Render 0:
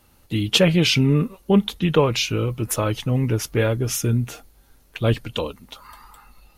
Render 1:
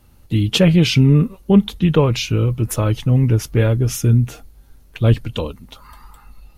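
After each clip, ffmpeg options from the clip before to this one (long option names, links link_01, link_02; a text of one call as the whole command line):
ffmpeg -i in.wav -af "lowshelf=frequency=230:gain=11,volume=-1dB" out.wav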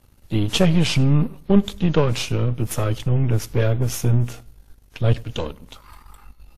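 ffmpeg -i in.wav -filter_complex "[0:a]aeval=exprs='if(lt(val(0),0),0.251*val(0),val(0))':channel_layout=same,asplit=2[link_01][link_02];[link_02]adelay=100,lowpass=frequency=4700:poles=1,volume=-23.5dB,asplit=2[link_03][link_04];[link_04]adelay=100,lowpass=frequency=4700:poles=1,volume=0.39,asplit=2[link_05][link_06];[link_06]adelay=100,lowpass=frequency=4700:poles=1,volume=0.39[link_07];[link_01][link_03][link_05][link_07]amix=inputs=4:normalize=0" -ar 32000 -c:a wmav2 -b:a 64k out.wma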